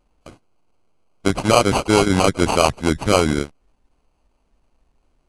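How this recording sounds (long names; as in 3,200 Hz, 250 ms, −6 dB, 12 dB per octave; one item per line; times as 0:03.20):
aliases and images of a low sample rate 1,800 Hz, jitter 0%
AAC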